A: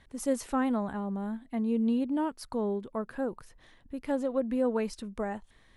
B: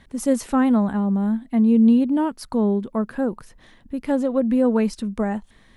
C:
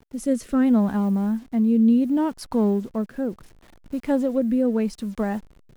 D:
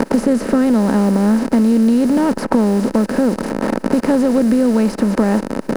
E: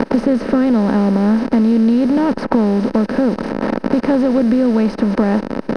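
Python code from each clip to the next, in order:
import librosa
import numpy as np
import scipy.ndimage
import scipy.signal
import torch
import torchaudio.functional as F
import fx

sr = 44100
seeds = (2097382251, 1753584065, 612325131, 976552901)

y1 = fx.peak_eq(x, sr, hz=210.0, db=7.0, octaves=0.68)
y1 = F.gain(torch.from_numpy(y1), 7.0).numpy()
y2 = fx.delta_hold(y1, sr, step_db=-44.0)
y2 = fx.rotary(y2, sr, hz=0.7)
y3 = fx.bin_compress(y2, sr, power=0.4)
y3 = fx.band_squash(y3, sr, depth_pct=100)
y3 = F.gain(torch.from_numpy(y3), 3.0).numpy()
y4 = scipy.signal.savgol_filter(y3, 15, 4, mode='constant')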